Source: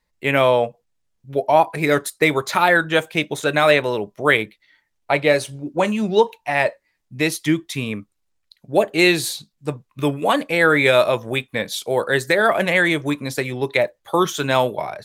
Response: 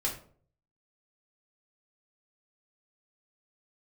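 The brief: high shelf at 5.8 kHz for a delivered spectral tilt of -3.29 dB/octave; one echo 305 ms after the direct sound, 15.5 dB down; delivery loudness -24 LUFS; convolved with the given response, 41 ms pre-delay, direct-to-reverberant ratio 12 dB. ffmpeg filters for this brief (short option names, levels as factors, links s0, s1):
-filter_complex "[0:a]highshelf=f=5800:g=-5.5,aecho=1:1:305:0.168,asplit=2[s0][s1];[1:a]atrim=start_sample=2205,adelay=41[s2];[s1][s2]afir=irnorm=-1:irlink=0,volume=0.141[s3];[s0][s3]amix=inputs=2:normalize=0,volume=0.562"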